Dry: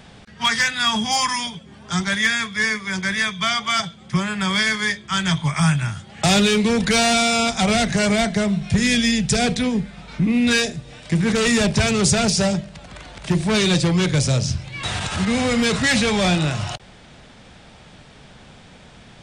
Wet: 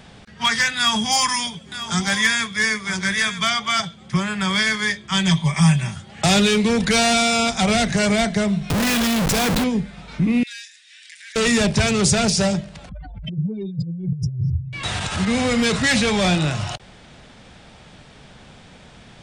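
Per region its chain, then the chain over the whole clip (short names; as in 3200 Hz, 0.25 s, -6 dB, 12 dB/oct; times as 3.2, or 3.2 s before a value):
0.77–3.5 high shelf 7100 Hz +7.5 dB + echo 0.947 s -12 dB + mismatched tape noise reduction encoder only
5.11–5.96 bell 1400 Hz -11.5 dB 0.32 oct + comb 5.2 ms, depth 63%
8.7–9.64 bell 130 Hz -9 dB 0.2 oct + notch 3100 Hz, Q 24 + Schmitt trigger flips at -28.5 dBFS
10.43–11.36 elliptic high-pass 1700 Hz, stop band 60 dB + compressor 2.5:1, threshold -41 dBFS
12.89–14.73 spectral contrast raised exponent 3.6 + notch 4200 Hz, Q 24 + negative-ratio compressor -23 dBFS, ratio -0.5
whole clip: dry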